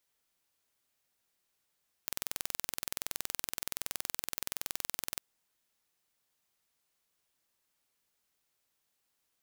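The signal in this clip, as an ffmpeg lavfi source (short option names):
-f lavfi -i "aevalsrc='0.447*eq(mod(n,2070),0)':d=3.13:s=44100"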